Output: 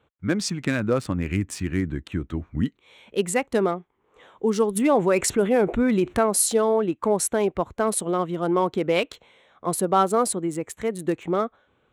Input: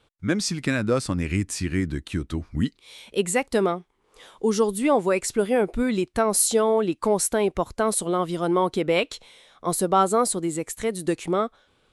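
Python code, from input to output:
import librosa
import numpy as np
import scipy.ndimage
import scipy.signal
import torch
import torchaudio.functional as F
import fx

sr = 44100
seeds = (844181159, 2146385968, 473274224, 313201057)

y = fx.wiener(x, sr, points=9)
y = scipy.signal.sosfilt(scipy.signal.butter(2, 56.0, 'highpass', fs=sr, output='sos'), y)
y = fx.env_flatten(y, sr, amount_pct=50, at=(4.75, 6.25), fade=0.02)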